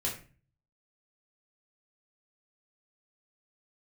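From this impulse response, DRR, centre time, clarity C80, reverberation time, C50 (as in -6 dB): -4.5 dB, 26 ms, 12.5 dB, 0.35 s, 7.5 dB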